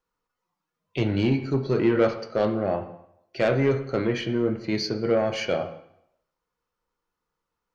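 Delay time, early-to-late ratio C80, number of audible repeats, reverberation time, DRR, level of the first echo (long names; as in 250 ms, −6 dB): no echo audible, 13.0 dB, no echo audible, 0.75 s, 7.0 dB, no echo audible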